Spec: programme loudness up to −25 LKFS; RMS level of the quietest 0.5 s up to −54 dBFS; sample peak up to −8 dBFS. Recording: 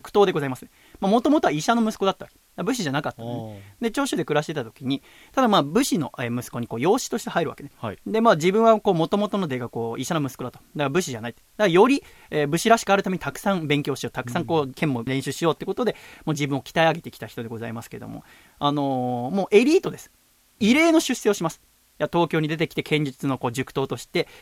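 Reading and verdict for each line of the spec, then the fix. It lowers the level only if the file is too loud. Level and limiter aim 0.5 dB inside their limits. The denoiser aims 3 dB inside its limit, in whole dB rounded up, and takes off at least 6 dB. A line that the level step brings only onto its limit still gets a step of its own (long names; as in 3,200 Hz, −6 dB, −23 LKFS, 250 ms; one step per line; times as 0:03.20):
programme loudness −23.0 LKFS: out of spec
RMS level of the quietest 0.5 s −60 dBFS: in spec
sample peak −3.5 dBFS: out of spec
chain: level −2.5 dB
brickwall limiter −8.5 dBFS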